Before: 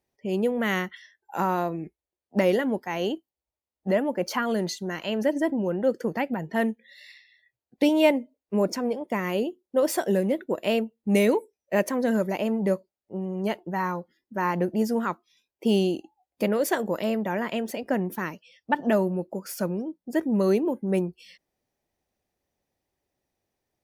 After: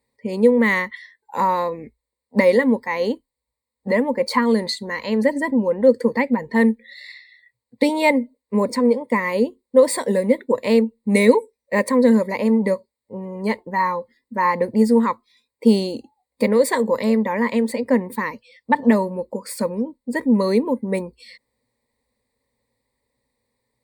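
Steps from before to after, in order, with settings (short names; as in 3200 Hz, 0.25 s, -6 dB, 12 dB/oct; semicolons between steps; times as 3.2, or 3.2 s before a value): ripple EQ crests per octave 0.97, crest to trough 16 dB; gain +3.5 dB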